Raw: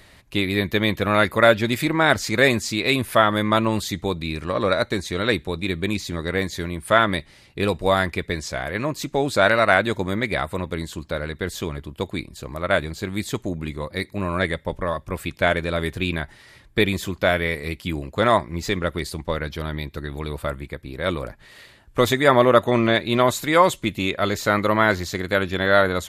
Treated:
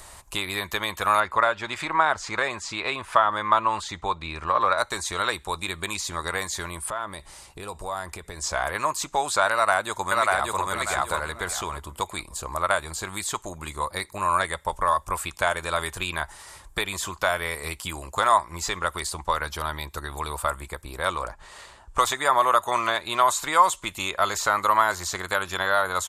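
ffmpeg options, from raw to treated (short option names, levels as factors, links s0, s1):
-filter_complex "[0:a]asettb=1/sr,asplit=3[s0][s1][s2];[s0]atrim=end=1.204[s3];[s1]atrim=start=1.2:end=4.78,asetpts=PTS-STARTPTS,afade=t=in:d=0.004:c=qsin,afade=t=out:st=3.576:d=0.004:c=qsin,lowpass=3000[s4];[s2]atrim=start=4.776[s5];[s3][s4]acrossfade=d=0.004:c1=hsin:c2=qsin[s6];[s6][s5]acrossfade=d=0.004:c1=qsin:c2=hsin,asettb=1/sr,asplit=3[s7][s8][s9];[s7]atrim=end=6.894[s10];[s8]atrim=start=6.89:end=8.44,asetpts=PTS-STARTPTS,afade=t=in:d=0.004:c=qsin,afade=t=out:st=1.546:d=0.004:c=qsin,acompressor=threshold=0.0178:ratio=4:attack=3.2:release=140:knee=1:detection=peak[s11];[s9]atrim=start=8.436[s12];[s10][s11]acrossfade=d=0.004:c1=hsin:c2=qsin[s13];[s13][s12]acrossfade=d=0.004:c1=qsin:c2=hsin,asplit=2[s14][s15];[s15]afade=t=in:st=9.52:d=0.01,afade=t=out:st=10.6:d=0.01,aecho=0:1:590|1180|1770:0.749894|0.149979|0.0299958[s16];[s14][s16]amix=inputs=2:normalize=0,asettb=1/sr,asplit=3[s17][s18][s19];[s17]atrim=end=21.094[s20];[s18]atrim=start=21.09:end=22.02,asetpts=PTS-STARTPTS,afade=t=in:d=0.004:c=qsin,afade=t=out:st=0.926:d=0.004:c=qsin,adynamicsmooth=sensitivity=4.5:basefreq=6500[s21];[s19]atrim=start=22.016[s22];[s20][s21]acrossfade=d=0.004:c1=hsin:c2=qsin[s23];[s23][s22]acrossfade=d=0.004:c1=qsin:c2=hsin,acrossover=split=860|4900[s24][s25][s26];[s24]acompressor=threshold=0.02:ratio=4[s27];[s25]acompressor=threshold=0.0562:ratio=4[s28];[s26]acompressor=threshold=0.00398:ratio=4[s29];[s27][s28][s29]amix=inputs=3:normalize=0,equalizer=f=125:t=o:w=1:g=-10,equalizer=f=250:t=o:w=1:g=-11,equalizer=f=500:t=o:w=1:g=-4,equalizer=f=1000:t=o:w=1:g=8,equalizer=f=2000:t=o:w=1:g=-9,equalizer=f=4000:t=o:w=1:g=-6,equalizer=f=8000:t=o:w=1:g=11,volume=2.11"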